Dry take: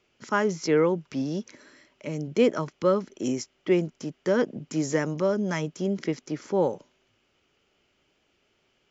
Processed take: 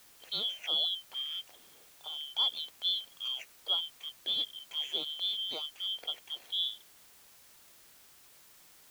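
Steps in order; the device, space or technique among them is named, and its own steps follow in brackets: split-band scrambled radio (four frequency bands reordered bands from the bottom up 2413; band-pass 380–3400 Hz; white noise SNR 21 dB); trim -7 dB

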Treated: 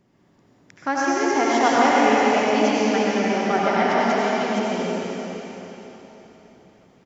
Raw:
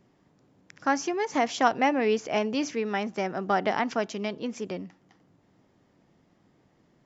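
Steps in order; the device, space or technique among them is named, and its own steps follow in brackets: cave (delay 304 ms -8.5 dB; reverberation RT60 3.8 s, pre-delay 75 ms, DRR -6.5 dB)

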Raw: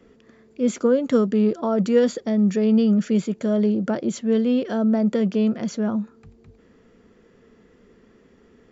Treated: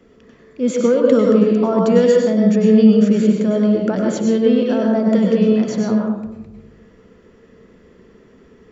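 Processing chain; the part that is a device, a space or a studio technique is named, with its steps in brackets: bathroom (reverberation RT60 0.90 s, pre-delay 93 ms, DRR -1 dB); trim +2.5 dB

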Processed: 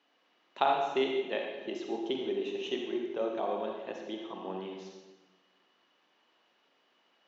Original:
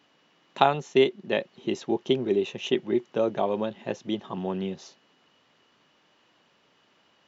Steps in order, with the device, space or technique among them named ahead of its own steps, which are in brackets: supermarket ceiling speaker (band-pass 330–5400 Hz; reverberation RT60 1.2 s, pre-delay 41 ms, DRR 1 dB); trim -8 dB

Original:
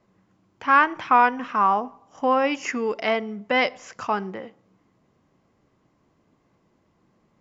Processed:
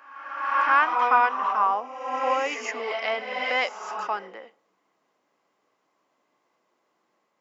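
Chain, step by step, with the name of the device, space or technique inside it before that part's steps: ghost voice (reverse; reverberation RT60 1.3 s, pre-delay 95 ms, DRR 3 dB; reverse; high-pass 550 Hz 12 dB/octave); trim -3 dB

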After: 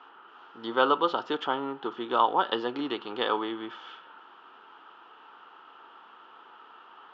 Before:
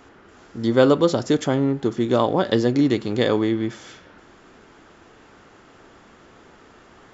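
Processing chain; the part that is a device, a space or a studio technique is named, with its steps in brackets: phone earpiece (cabinet simulation 490–3500 Hz, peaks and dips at 590 Hz -7 dB, 910 Hz +10 dB, 1.3 kHz +10 dB, 2.1 kHz -9 dB, 3 kHz +10 dB); trim -5 dB

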